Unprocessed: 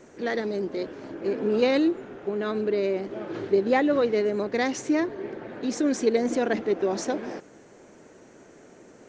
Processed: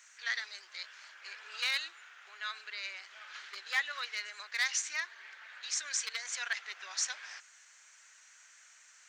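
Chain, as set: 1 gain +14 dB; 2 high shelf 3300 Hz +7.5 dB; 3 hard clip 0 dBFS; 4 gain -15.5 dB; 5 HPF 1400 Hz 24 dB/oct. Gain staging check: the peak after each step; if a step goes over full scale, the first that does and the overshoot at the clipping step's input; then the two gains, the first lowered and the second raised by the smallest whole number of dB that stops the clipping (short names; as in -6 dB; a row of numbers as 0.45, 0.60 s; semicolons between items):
+4.0, +5.0, 0.0, -15.5, -17.5 dBFS; step 1, 5.0 dB; step 1 +9 dB, step 4 -10.5 dB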